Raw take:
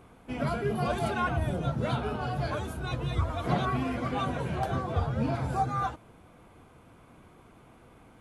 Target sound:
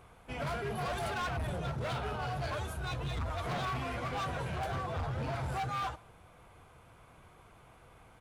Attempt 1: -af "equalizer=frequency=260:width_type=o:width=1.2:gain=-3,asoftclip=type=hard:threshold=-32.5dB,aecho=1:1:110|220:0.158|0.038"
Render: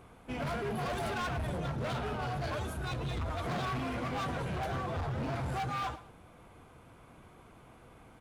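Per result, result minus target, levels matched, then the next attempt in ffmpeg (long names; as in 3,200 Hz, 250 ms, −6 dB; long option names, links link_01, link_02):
echo-to-direct +9 dB; 250 Hz band +3.5 dB
-af "equalizer=frequency=260:width_type=o:width=1.2:gain=-3,asoftclip=type=hard:threshold=-32.5dB,aecho=1:1:110|220:0.0562|0.0135"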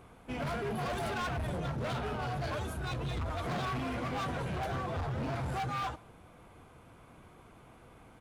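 250 Hz band +3.5 dB
-af "equalizer=frequency=260:width_type=o:width=1.2:gain=-11.5,asoftclip=type=hard:threshold=-32.5dB,aecho=1:1:110|220:0.0562|0.0135"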